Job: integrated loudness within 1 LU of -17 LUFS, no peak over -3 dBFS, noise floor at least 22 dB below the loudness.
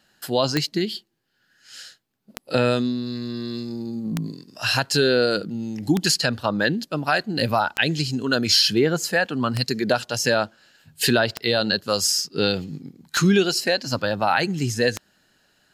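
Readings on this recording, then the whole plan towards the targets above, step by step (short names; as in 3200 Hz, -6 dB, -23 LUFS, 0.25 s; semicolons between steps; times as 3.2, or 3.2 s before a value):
clicks 9; loudness -22.0 LUFS; peak -4.5 dBFS; loudness target -17.0 LUFS
-> de-click; gain +5 dB; limiter -3 dBFS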